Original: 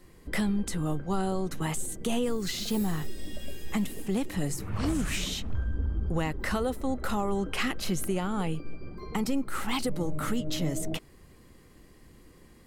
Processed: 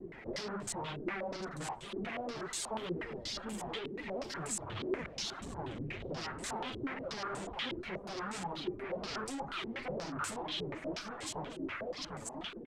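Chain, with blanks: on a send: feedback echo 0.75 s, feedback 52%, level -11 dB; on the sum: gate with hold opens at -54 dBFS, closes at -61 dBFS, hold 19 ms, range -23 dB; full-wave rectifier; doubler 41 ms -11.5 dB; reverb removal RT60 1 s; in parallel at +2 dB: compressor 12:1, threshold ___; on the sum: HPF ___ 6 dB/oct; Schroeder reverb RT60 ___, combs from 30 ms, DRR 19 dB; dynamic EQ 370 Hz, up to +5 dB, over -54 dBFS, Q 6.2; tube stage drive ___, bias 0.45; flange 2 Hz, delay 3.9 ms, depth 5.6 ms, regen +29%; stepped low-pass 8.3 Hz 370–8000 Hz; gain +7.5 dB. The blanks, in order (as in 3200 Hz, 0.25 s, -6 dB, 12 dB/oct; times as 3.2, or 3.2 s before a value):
-40 dBFS, 94 Hz, 1.4 s, 45 dB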